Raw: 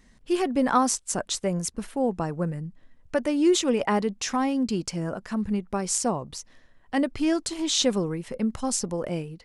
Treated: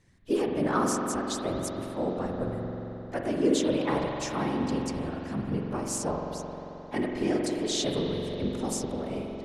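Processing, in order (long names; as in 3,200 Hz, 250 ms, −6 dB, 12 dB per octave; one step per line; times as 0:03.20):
dynamic equaliser 380 Hz, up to +4 dB, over −37 dBFS, Q 3.1
random phases in short frames
pitch-shifted copies added +3 semitones −10 dB
spring reverb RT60 3.8 s, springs 44 ms, chirp 45 ms, DRR 0.5 dB
level −7.5 dB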